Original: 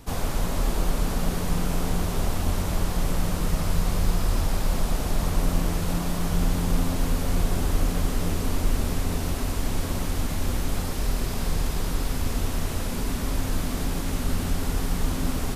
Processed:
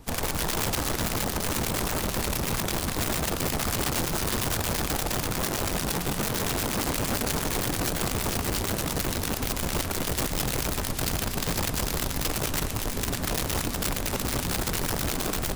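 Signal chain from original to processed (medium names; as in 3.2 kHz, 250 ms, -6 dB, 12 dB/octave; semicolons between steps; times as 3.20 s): integer overflow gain 20.5 dB; harmonic tremolo 8.7 Hz, depth 50%, crossover 1.4 kHz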